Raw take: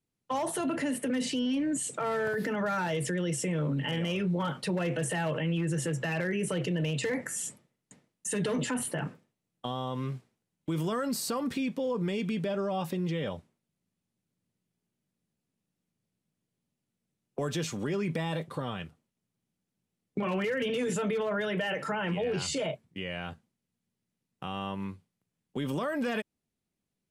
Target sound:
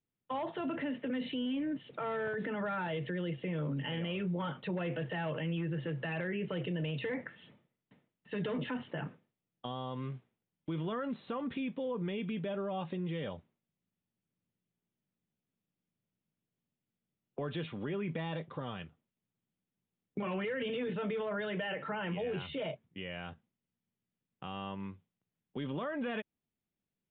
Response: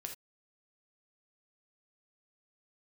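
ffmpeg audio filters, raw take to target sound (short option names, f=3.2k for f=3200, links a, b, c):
-af "aresample=8000,aresample=44100,volume=-5.5dB"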